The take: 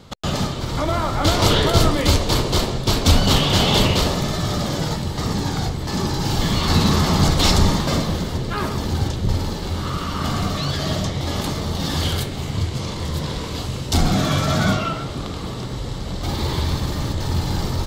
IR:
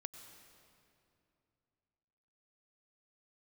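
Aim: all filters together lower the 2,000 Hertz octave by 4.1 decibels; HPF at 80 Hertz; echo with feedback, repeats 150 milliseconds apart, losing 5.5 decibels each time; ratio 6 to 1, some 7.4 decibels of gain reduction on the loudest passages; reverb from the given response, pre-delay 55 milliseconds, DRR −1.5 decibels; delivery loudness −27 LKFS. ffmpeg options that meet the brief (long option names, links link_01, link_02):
-filter_complex "[0:a]highpass=80,equalizer=frequency=2000:width_type=o:gain=-5.5,acompressor=threshold=-20dB:ratio=6,aecho=1:1:150|300|450|600|750|900|1050:0.531|0.281|0.149|0.079|0.0419|0.0222|0.0118,asplit=2[link_01][link_02];[1:a]atrim=start_sample=2205,adelay=55[link_03];[link_02][link_03]afir=irnorm=-1:irlink=0,volume=5.5dB[link_04];[link_01][link_04]amix=inputs=2:normalize=0,volume=-7.5dB"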